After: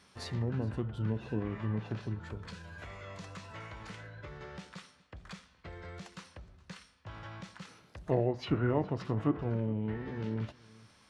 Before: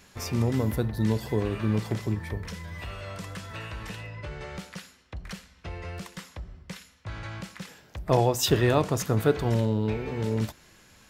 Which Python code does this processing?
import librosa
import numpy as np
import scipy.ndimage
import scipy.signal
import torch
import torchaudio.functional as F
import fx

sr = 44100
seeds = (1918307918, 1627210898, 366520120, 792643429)

p1 = fx.highpass(x, sr, hz=100.0, slope=6)
p2 = fx.env_lowpass_down(p1, sr, base_hz=1700.0, full_db=-20.0)
p3 = fx.formant_shift(p2, sr, semitones=-4)
p4 = p3 + fx.echo_single(p3, sr, ms=417, db=-22.5, dry=0)
y = F.gain(torch.from_numpy(p4), -6.5).numpy()